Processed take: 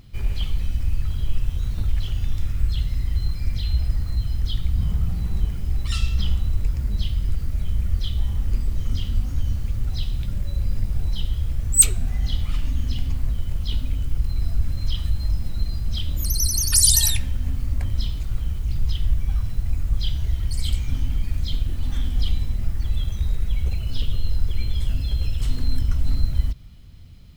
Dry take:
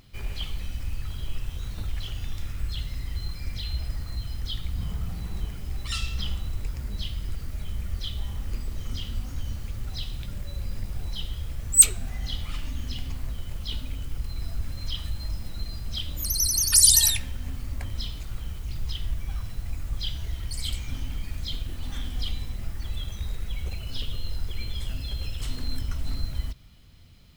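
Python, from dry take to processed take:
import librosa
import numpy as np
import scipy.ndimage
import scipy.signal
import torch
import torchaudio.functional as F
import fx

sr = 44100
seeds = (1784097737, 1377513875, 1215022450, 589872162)

y = fx.low_shelf(x, sr, hz=270.0, db=9.5)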